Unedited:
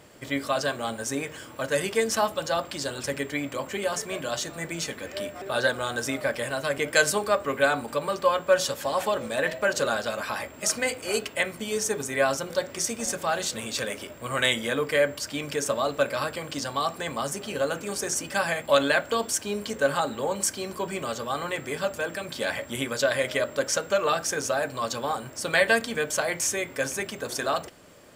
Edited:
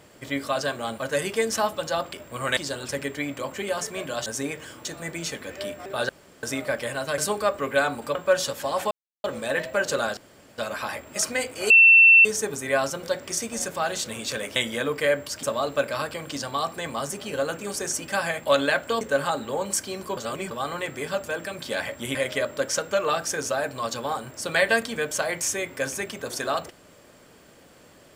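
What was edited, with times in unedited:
0.98–1.57 move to 4.41
5.65–5.99 room tone
6.74–7.04 cut
8.01–8.36 cut
9.12 insert silence 0.33 s
10.05 insert room tone 0.41 s
11.17–11.72 bleep 2690 Hz -9.5 dBFS
14.03–14.47 move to 2.72
15.34–15.65 cut
19.23–19.71 cut
20.87–21.21 reverse
22.85–23.14 cut

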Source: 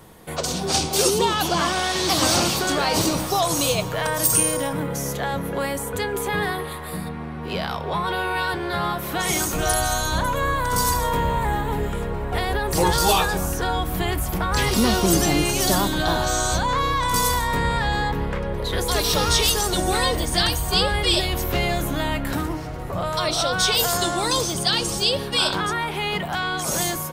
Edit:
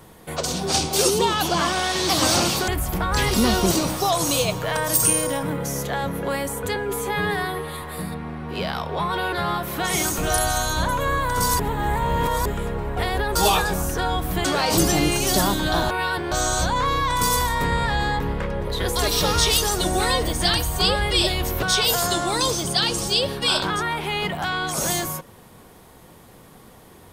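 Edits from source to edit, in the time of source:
2.68–3.01 swap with 14.08–15.11
6.06–6.77 stretch 1.5×
8.27–8.68 move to 16.24
10.95–11.81 reverse
12.71–12.99 cut
21.55–23.53 cut

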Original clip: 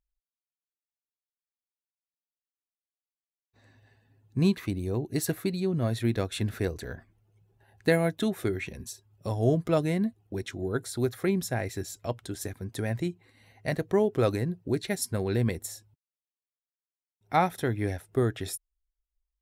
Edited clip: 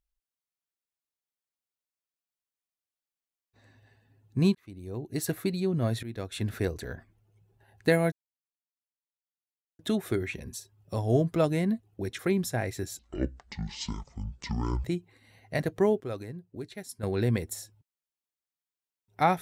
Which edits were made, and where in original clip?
4.55–5.42 fade in
6.03–6.54 fade in, from -17 dB
8.12 insert silence 1.67 s
10.52–11.17 cut
11.97–12.97 speed 54%
14.13–15.16 gain -11 dB

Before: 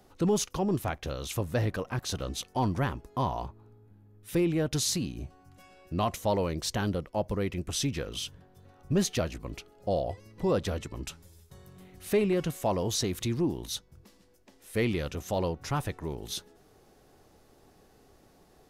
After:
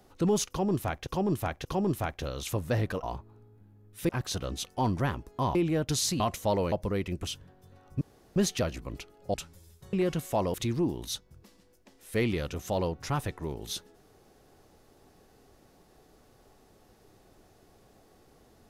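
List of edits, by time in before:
0.49–1.07 loop, 3 plays
3.33–4.39 move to 1.87
5.04–6 cut
6.52–7.18 cut
7.73–8.2 cut
8.94 insert room tone 0.35 s
9.92–11.03 cut
11.62–12.24 cut
12.85–13.15 cut

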